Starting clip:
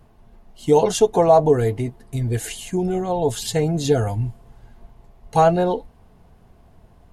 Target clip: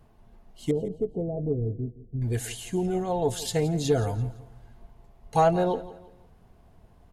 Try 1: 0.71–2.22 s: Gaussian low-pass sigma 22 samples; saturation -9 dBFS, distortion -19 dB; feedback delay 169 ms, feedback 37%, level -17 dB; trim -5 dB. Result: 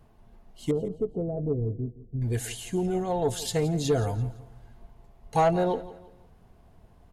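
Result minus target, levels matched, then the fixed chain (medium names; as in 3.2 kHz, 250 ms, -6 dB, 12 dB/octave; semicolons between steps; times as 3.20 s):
saturation: distortion +11 dB
0.71–2.22 s: Gaussian low-pass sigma 22 samples; saturation -2 dBFS, distortion -31 dB; feedback delay 169 ms, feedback 37%, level -17 dB; trim -5 dB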